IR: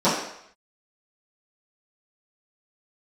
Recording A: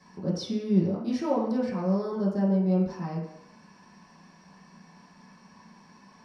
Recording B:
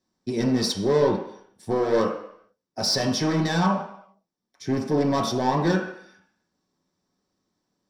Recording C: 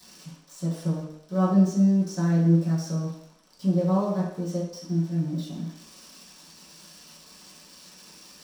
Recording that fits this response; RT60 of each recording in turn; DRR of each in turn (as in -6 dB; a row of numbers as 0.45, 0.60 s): C; 0.70, 0.70, 0.70 s; -7.0, -1.0, -14.5 dB